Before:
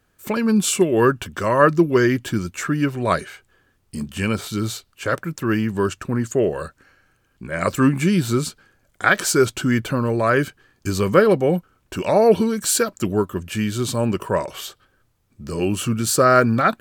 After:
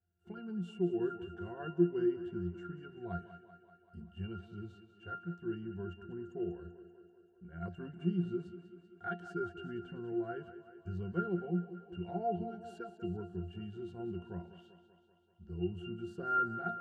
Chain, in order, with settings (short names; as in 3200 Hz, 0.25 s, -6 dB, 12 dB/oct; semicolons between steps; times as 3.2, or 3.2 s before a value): octave resonator F, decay 0.21 s; thinning echo 0.193 s, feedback 67%, high-pass 170 Hz, level -12 dB; gain -7.5 dB